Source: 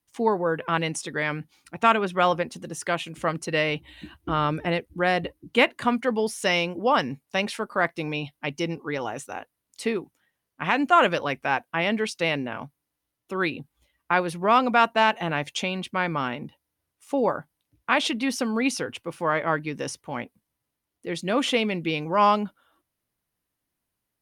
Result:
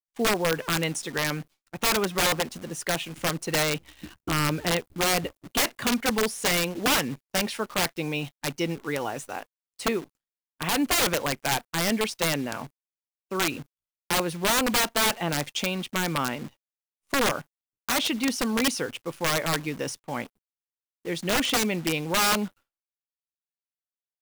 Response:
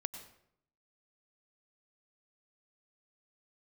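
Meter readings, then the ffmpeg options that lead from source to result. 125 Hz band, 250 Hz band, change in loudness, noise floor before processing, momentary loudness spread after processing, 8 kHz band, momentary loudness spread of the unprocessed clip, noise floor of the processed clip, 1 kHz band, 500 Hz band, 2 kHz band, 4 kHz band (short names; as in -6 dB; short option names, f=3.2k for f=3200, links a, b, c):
+0.5 dB, -1.0 dB, -1.0 dB, -82 dBFS, 11 LU, +10.0 dB, 13 LU, under -85 dBFS, -5.5 dB, -3.5 dB, -1.5 dB, +4.0 dB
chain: -af "acrusher=bits=8:dc=4:mix=0:aa=0.000001,agate=range=-33dB:threshold=-42dB:ratio=3:detection=peak,aeval=exprs='(mod(6.68*val(0)+1,2)-1)/6.68':c=same"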